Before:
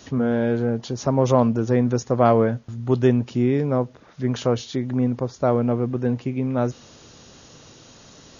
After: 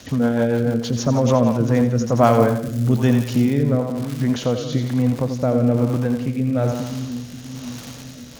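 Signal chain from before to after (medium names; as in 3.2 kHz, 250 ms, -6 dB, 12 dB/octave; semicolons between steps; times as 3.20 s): crackle 210 per s -31 dBFS; in parallel at -2 dB: compression, threshold -26 dBFS, peak gain reduction 14.5 dB; on the sum: peaking EQ 380 Hz -11 dB 0.25 oct; two-band feedback delay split 300 Hz, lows 535 ms, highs 86 ms, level -7 dB; rotary cabinet horn 6.7 Hz, later 1.1 Hz, at 1.14 s; 2.23–3.62 s: treble shelf 6.2 kHz +9 dB; trim +2.5 dB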